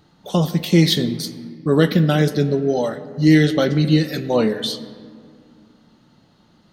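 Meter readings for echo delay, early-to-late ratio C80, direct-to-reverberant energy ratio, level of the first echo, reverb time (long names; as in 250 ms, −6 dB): no echo audible, 14.5 dB, 11.5 dB, no echo audible, 2.2 s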